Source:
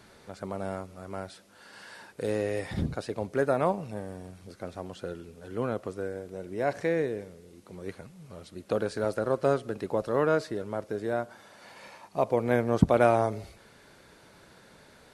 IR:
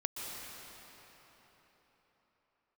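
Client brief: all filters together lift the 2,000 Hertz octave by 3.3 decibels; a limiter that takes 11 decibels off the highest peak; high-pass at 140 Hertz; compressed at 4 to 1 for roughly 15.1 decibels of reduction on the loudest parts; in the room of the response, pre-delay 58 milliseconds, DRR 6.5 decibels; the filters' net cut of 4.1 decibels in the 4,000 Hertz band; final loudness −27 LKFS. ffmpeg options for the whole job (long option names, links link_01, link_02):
-filter_complex "[0:a]highpass=140,equalizer=frequency=2000:width_type=o:gain=6,equalizer=frequency=4000:width_type=o:gain=-7,acompressor=threshold=-36dB:ratio=4,alimiter=level_in=7dB:limit=-24dB:level=0:latency=1,volume=-7dB,asplit=2[link_01][link_02];[1:a]atrim=start_sample=2205,adelay=58[link_03];[link_02][link_03]afir=irnorm=-1:irlink=0,volume=-9dB[link_04];[link_01][link_04]amix=inputs=2:normalize=0,volume=16.5dB"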